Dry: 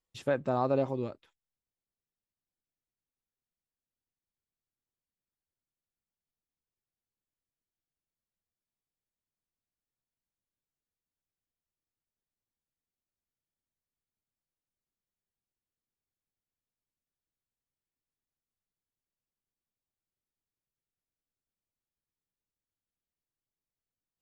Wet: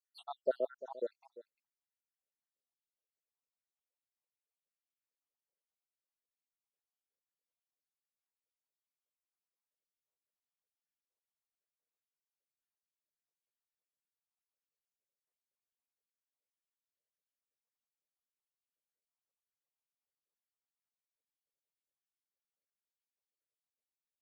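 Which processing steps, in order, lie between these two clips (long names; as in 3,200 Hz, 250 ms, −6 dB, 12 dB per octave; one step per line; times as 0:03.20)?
time-frequency cells dropped at random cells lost 83%
four-pole ladder high-pass 420 Hz, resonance 50%
single-tap delay 346 ms −16 dB
level +7 dB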